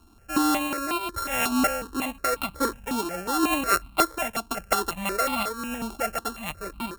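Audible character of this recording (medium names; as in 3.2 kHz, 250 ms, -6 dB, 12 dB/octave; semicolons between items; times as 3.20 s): a buzz of ramps at a fixed pitch in blocks of 32 samples; random-step tremolo; notches that jump at a steady rate 5.5 Hz 520–1700 Hz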